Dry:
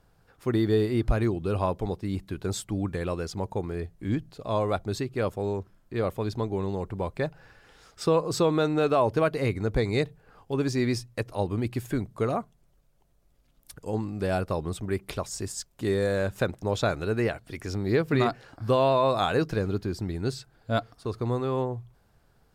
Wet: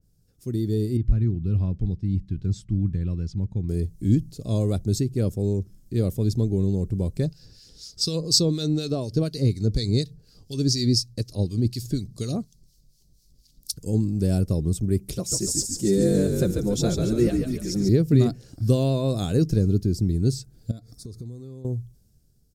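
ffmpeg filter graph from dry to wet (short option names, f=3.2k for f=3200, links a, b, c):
-filter_complex "[0:a]asettb=1/sr,asplit=3[a][b][c];[a]atrim=end=0.974[d];[b]atrim=start=0.97:end=3.69,asetpts=PTS-STARTPTS,afade=t=in:d=0.004:c=qsin,afade=t=out:st=2.716:d=0.004:c=qsin,lowpass=2.1k,equalizer=f=500:w=0.74:g=-12.5,asoftclip=type=hard:threshold=-19dB[e];[c]atrim=start=3.686[f];[d][e]acrossfade=d=0.004:c1=hsin:c2=qsin[g];[g][f]acrossfade=d=0.004:c1=qsin:c2=hsin,asettb=1/sr,asplit=3[h][i][j];[h]atrim=end=7.254[k];[i]atrim=start=7.25:end=13.79,asetpts=PTS-STARTPTS,afade=t=in:d=0.004:c=qsin,afade=t=out:st=6.536:d=0.004:c=qsin,equalizer=f=4.5k:t=o:w=0.85:g=15,acrossover=split=1400[l][m];[l]aeval=exprs='val(0)*(1-0.7/2+0.7/2*cos(2*PI*4.1*n/s))':c=same[n];[m]aeval=exprs='val(0)*(1-0.7/2-0.7/2*cos(2*PI*4.1*n/s))':c=same[o];[n][o]amix=inputs=2:normalize=0[p];[j]atrim=start=13.786[q];[k][p]acrossfade=d=0.004:c1=hsin:c2=qsin[r];[r][q]acrossfade=d=0.004:c1=qsin:c2=hsin,asettb=1/sr,asplit=3[s][t][u];[s]atrim=end=15.154[v];[t]atrim=start=15.15:end=17.89,asetpts=PTS-STARTPTS,afade=t=in:d=0.004:c=qsin,afade=t=out:st=2.736:d=0.004:c=qsin,highpass=f=220:p=1,aecho=1:1:5.7:0.98,atrim=end_sample=120834,asplit=7[w][x][y][z][aa][ab][ac];[x]adelay=142,afreqshift=-52,volume=-5dB[ad];[y]adelay=284,afreqshift=-104,volume=-11.6dB[ae];[z]adelay=426,afreqshift=-156,volume=-18.1dB[af];[aa]adelay=568,afreqshift=-208,volume=-24.7dB[ag];[ab]adelay=710,afreqshift=-260,volume=-31.2dB[ah];[ac]adelay=852,afreqshift=-312,volume=-37.8dB[ai];[w][ad][ae][af][ag][ah][ai]amix=inputs=7:normalize=0,atrim=end_sample=120834[aj];[u]atrim=start=17.886[ak];[v][aj]acrossfade=d=0.004:c1=hsin:c2=qsin[al];[al][ak]acrossfade=d=0.004:c1=qsin:c2=hsin,asettb=1/sr,asplit=3[am][an][ao];[am]atrim=end=20.714[ap];[an]atrim=start=20.71:end=21.65,asetpts=PTS-STARTPTS,afade=t=in:d=0.004:c=qsin,afade=t=out:st=0.936:d=0.004:c=qsin,acompressor=threshold=-42dB:ratio=6:attack=3.2:release=140:knee=1:detection=peak,asuperstop=centerf=2900:order=4:qfactor=3[aq];[ao]atrim=start=21.646[ar];[ap][aq]acrossfade=d=0.004:c1=hsin:c2=qsin[as];[as][ar]acrossfade=d=0.004:c1=qsin:c2=hsin,firequalizer=gain_entry='entry(170,0);entry(900,-27);entry(5500,3)':delay=0.05:min_phase=1,dynaudnorm=f=220:g=9:m=10dB,adynamicequalizer=threshold=0.00501:dfrequency=2300:dqfactor=0.7:tfrequency=2300:tqfactor=0.7:attack=5:release=100:ratio=0.375:range=3:mode=cutabove:tftype=highshelf"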